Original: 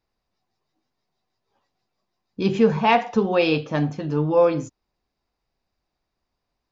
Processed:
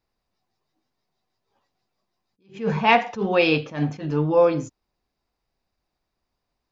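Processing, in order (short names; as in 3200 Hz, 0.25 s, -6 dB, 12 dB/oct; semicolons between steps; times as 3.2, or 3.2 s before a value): 2.44–4.27 bell 2200 Hz +4.5 dB 1 oct; attack slew limiter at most 180 dB/s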